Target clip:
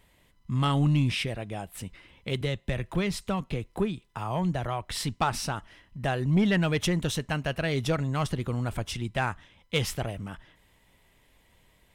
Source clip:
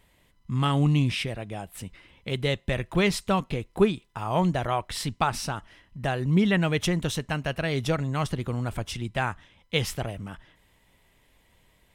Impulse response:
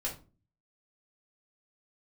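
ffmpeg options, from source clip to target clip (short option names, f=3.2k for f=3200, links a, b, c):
-filter_complex "[0:a]asettb=1/sr,asplit=3[a][b][c];[a]atrim=end=2.414[d];[b]atrim=start=2.41:end=4.88,asetpts=PTS-STARTPTS,afade=t=in:d=0.004:c=qsin,afade=t=out:st=2.466:d=0.004:c=qsin,acrossover=split=170[e][f];[f]acompressor=threshold=-31dB:ratio=2[g];[e][g]amix=inputs=2:normalize=0[h];[c]atrim=start=4.876[i];[d][h]acrossfade=d=0.004:c1=hsin:c2=qsin[j];[j][i]acrossfade=d=0.004:c1=qsin:c2=hsin,asoftclip=type=tanh:threshold=-15dB"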